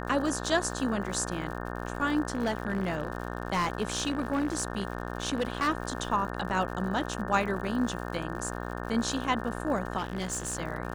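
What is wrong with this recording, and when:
mains buzz 60 Hz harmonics 30 −36 dBFS
surface crackle 110 per second −38 dBFS
0:02.27–0:05.69: clipping −23 dBFS
0:09.97–0:10.57: clipping −28 dBFS

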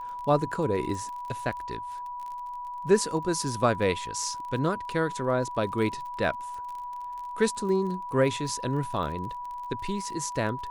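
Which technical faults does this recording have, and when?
surface crackle 32 per second −36 dBFS
whistle 980 Hz −34 dBFS

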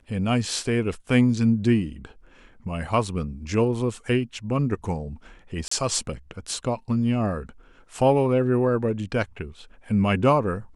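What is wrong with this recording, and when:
0:05.68–0:05.71: drop-out 34 ms

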